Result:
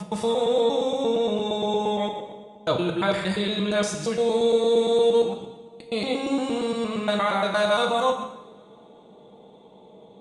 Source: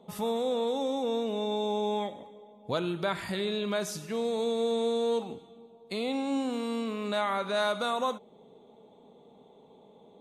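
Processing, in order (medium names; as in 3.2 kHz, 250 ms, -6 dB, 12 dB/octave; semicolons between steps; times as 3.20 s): time reversed locally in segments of 116 ms; resampled via 22.05 kHz; two-slope reverb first 0.78 s, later 3.3 s, from -27 dB, DRR 2.5 dB; trim +5 dB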